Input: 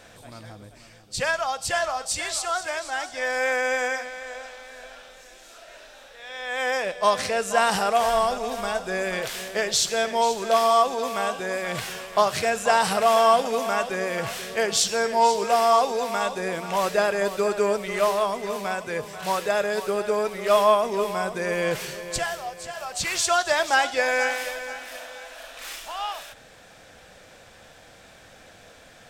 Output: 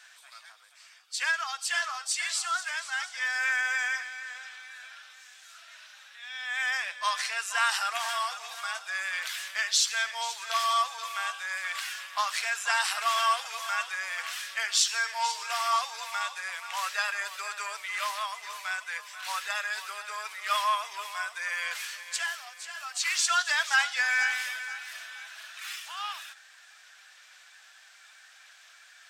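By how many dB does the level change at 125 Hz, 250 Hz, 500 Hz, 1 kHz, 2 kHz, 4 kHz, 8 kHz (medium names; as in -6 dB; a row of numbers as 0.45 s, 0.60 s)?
under -40 dB, under -40 dB, -23.5 dB, -7.5 dB, -0.5 dB, -1.0 dB, -2.5 dB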